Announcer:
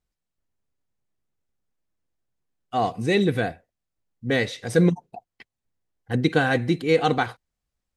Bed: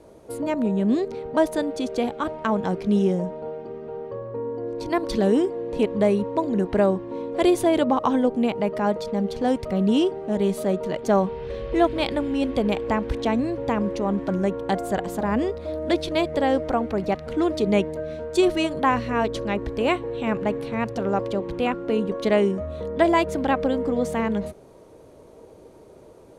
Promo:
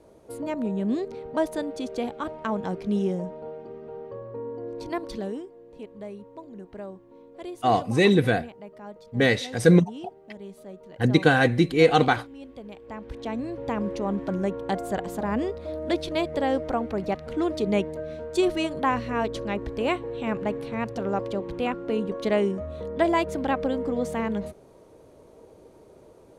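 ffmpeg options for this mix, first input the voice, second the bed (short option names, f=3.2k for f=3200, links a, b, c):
-filter_complex "[0:a]adelay=4900,volume=2dB[a];[1:a]volume=10.5dB,afade=t=out:st=4.8:d=0.66:silence=0.199526,afade=t=in:st=12.81:d=1.09:silence=0.16788[b];[a][b]amix=inputs=2:normalize=0"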